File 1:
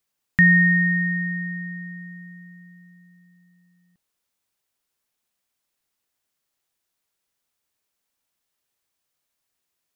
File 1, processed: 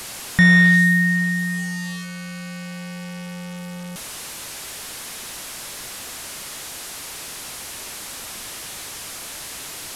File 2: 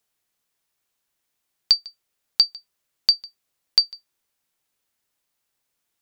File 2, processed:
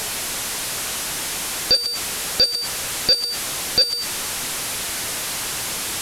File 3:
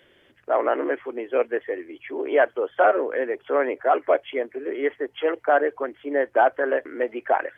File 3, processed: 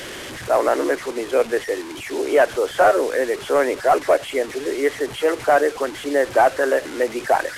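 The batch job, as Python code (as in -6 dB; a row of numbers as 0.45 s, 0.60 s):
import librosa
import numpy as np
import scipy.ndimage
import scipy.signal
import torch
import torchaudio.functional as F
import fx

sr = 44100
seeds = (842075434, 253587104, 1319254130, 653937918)

y = fx.delta_mod(x, sr, bps=64000, step_db=-32.0)
y = 10.0 ** (-10.0 / 20.0) * np.tanh(y / 10.0 ** (-10.0 / 20.0))
y = y * 10.0 ** (-6 / 20.0) / np.max(np.abs(y))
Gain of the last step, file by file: +5.5 dB, +13.5 dB, +5.0 dB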